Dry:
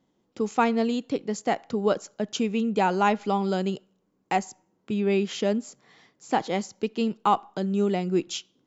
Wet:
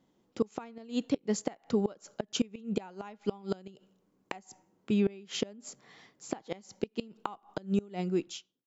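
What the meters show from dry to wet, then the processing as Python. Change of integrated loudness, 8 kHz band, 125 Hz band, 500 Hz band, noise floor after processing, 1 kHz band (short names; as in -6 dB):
-8.5 dB, n/a, -6.5 dB, -9.0 dB, -74 dBFS, -18.5 dB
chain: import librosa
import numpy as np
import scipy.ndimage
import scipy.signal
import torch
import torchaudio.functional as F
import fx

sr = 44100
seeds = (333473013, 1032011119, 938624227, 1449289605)

y = fx.fade_out_tail(x, sr, length_s=0.97)
y = fx.gate_flip(y, sr, shuts_db=-17.0, range_db=-25)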